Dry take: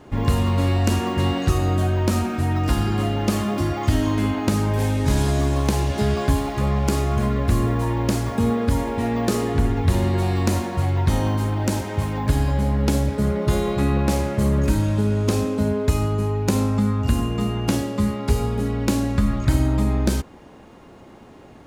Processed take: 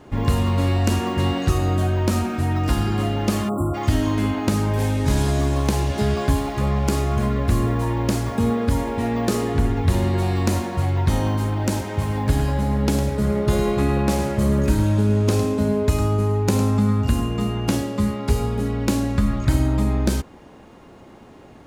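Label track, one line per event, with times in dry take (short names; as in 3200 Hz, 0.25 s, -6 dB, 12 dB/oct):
3.490000	3.750000	spectral delete 1400–7300 Hz
11.960000	17.050000	echo 0.106 s -9 dB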